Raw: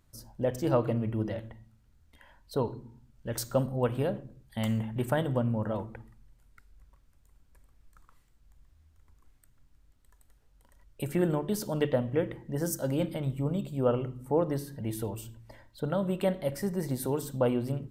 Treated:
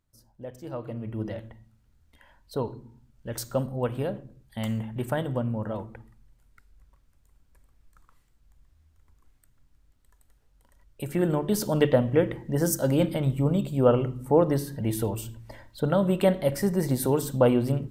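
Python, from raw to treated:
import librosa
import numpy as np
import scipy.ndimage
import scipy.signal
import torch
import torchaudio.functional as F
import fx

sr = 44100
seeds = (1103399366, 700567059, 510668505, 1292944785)

y = fx.gain(x, sr, db=fx.line((0.72, -10.5), (1.25, 0.0), (11.02, 0.0), (11.62, 6.5)))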